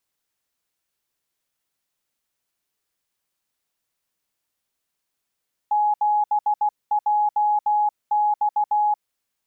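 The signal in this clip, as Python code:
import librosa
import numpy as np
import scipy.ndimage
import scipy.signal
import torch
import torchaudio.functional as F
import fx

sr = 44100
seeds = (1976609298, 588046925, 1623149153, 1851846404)

y = fx.morse(sr, text='7JX', wpm=16, hz=838.0, level_db=-16.5)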